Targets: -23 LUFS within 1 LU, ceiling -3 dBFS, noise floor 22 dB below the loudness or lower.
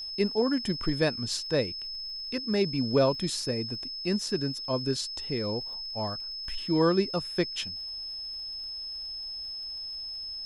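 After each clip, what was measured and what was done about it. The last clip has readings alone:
tick rate 39 per s; steady tone 5.2 kHz; tone level -35 dBFS; loudness -30.0 LUFS; peak level -12.0 dBFS; loudness target -23.0 LUFS
-> de-click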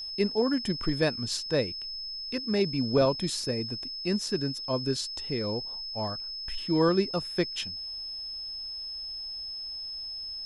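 tick rate 0.19 per s; steady tone 5.2 kHz; tone level -35 dBFS
-> band-stop 5.2 kHz, Q 30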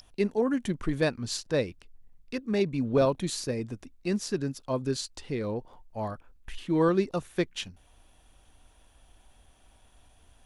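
steady tone not found; loudness -30.0 LUFS; peak level -12.5 dBFS; loudness target -23.0 LUFS
-> trim +7 dB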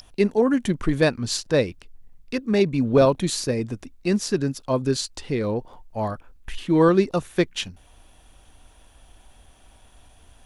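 loudness -23.0 LUFS; peak level -5.5 dBFS; noise floor -54 dBFS

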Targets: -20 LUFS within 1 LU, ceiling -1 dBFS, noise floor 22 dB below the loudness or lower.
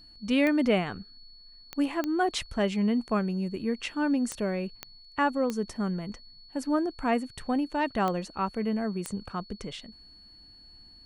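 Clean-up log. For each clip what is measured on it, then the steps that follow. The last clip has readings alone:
clicks found 8; steady tone 4.4 kHz; tone level -51 dBFS; loudness -29.5 LUFS; peak level -12.0 dBFS; loudness target -20.0 LUFS
-> de-click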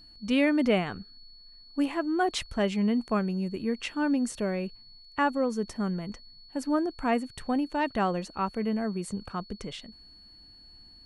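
clicks found 0; steady tone 4.4 kHz; tone level -51 dBFS
-> band-stop 4.4 kHz, Q 30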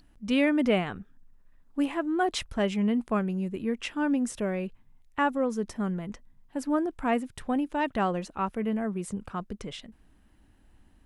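steady tone not found; loudness -29.5 LUFS; peak level -12.0 dBFS; loudness target -20.0 LUFS
-> trim +9.5 dB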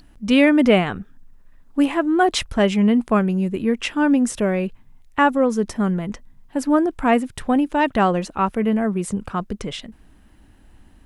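loudness -20.0 LUFS; peak level -2.5 dBFS; noise floor -51 dBFS

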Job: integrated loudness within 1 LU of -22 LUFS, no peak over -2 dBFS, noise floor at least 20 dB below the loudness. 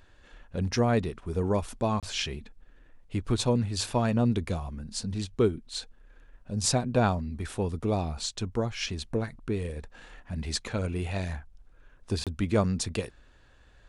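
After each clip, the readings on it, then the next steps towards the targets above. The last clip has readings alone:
dropouts 2; longest dropout 27 ms; loudness -30.0 LUFS; peak level -12.5 dBFS; loudness target -22.0 LUFS
-> interpolate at 2.00/12.24 s, 27 ms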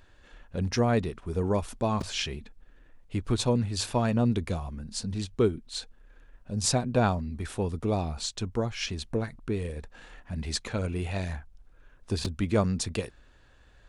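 dropouts 0; loudness -30.0 LUFS; peak level -12.5 dBFS; loudness target -22.0 LUFS
-> trim +8 dB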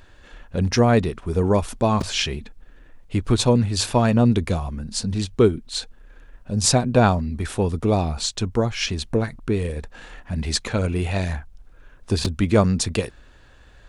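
loudness -22.0 LUFS; peak level -4.5 dBFS; noise floor -49 dBFS

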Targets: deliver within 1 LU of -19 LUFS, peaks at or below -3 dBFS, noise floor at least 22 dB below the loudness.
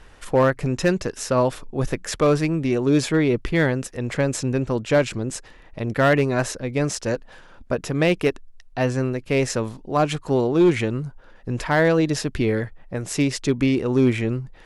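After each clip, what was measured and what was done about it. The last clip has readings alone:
clipped samples 0.4%; clipping level -10.5 dBFS; loudness -22.0 LUFS; peak level -10.5 dBFS; loudness target -19.0 LUFS
-> clip repair -10.5 dBFS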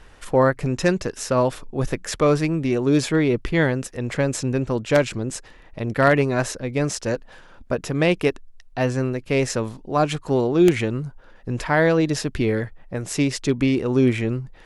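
clipped samples 0.0%; loudness -22.0 LUFS; peak level -1.5 dBFS; loudness target -19.0 LUFS
-> trim +3 dB; peak limiter -3 dBFS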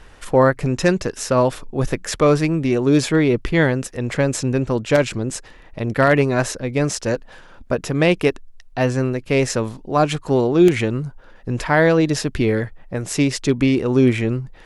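loudness -19.0 LUFS; peak level -3.0 dBFS; noise floor -44 dBFS

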